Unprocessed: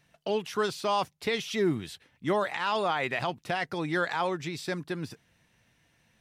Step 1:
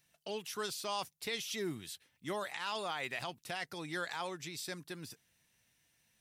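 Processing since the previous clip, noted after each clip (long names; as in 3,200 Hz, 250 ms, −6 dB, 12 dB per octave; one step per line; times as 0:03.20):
first-order pre-emphasis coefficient 0.8
level +1.5 dB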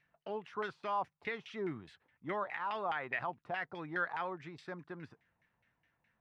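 auto-filter low-pass saw down 4.8 Hz 790–2,200 Hz
level −1 dB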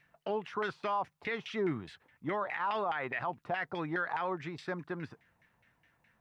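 brickwall limiter −32 dBFS, peak gain reduction 8.5 dB
level +7.5 dB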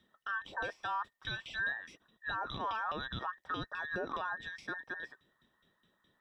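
frequency inversion band by band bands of 2,000 Hz
level −3.5 dB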